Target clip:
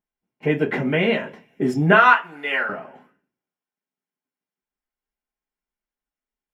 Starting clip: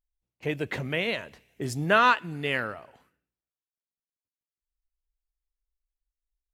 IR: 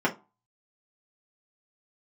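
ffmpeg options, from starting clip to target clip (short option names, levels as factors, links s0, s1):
-filter_complex "[0:a]asettb=1/sr,asplit=3[s0][s1][s2];[s0]atrim=end=1.924[s3];[s1]atrim=start=1.92:end=2.69,asetpts=PTS-STARTPTS,afade=t=in:d=0.004:c=qsin,afade=t=out:st=0.766:d=0.004:c=qsin,highpass=690[s4];[s2]atrim=start=2.686[s5];[s3][s4]acrossfade=d=0.004:c1=hsin:c2=qsin[s6];[s6][s5]acrossfade=d=0.004:c1=qsin:c2=hsin[s7];[1:a]atrim=start_sample=2205[s8];[s7][s8]afir=irnorm=-1:irlink=0,volume=0.562"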